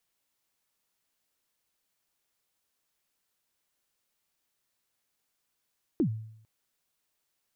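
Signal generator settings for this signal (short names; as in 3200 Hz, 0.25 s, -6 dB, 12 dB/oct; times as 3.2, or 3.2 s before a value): kick drum length 0.45 s, from 370 Hz, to 110 Hz, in 89 ms, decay 0.70 s, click off, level -20 dB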